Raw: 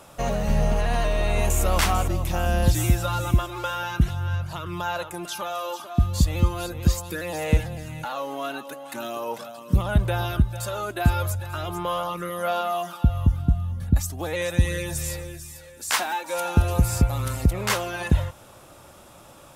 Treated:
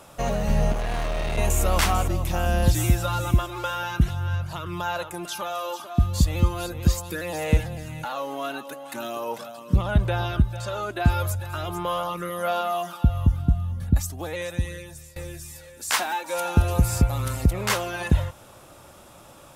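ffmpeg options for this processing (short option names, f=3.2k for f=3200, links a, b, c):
-filter_complex "[0:a]asettb=1/sr,asplit=3[a][b][c];[a]atrim=end=0.724[d];[b]atrim=start=0.72:end=1.38,asetpts=PTS-STARTPTS,afade=t=in:d=0.004:c=qsin,afade=t=out:st=0.656:d=0.004:c=qsin,asoftclip=type=hard:threshold=-23.5dB[e];[c]atrim=start=1.376[f];[d][e]acrossfade=d=0.004:c1=hsin:c2=qsin[g];[g][f]acrossfade=d=0.004:c1=qsin:c2=hsin,asettb=1/sr,asplit=3[h][i][j];[h]atrim=end=9.624[k];[i]atrim=start=9.62:end=11.1,asetpts=PTS-STARTPTS,afade=t=in:d=0.004:c=qsin,afade=t=out:st=1.476:d=0.004:c=qsin,acrossover=split=6700[l][m];[m]acompressor=threshold=-56dB:ratio=4:attack=1:release=60[n];[l][n]amix=inputs=2:normalize=0[o];[j]atrim=start=11.096[p];[k][o]acrossfade=d=0.004:c1=hsin:c2=qsin[q];[q][p]acrossfade=d=0.004:c1=qsin:c2=hsin,asplit=2[r][s];[r]atrim=end=15.16,asetpts=PTS-STARTPTS,afade=t=out:st=13.89:d=1.27:silence=0.0707946[t];[s]atrim=start=15.16,asetpts=PTS-STARTPTS,afade=t=in:d=0.004:c=hsin:silence=0.0707946[u];[t][u]concat=n=2:v=0:a=1"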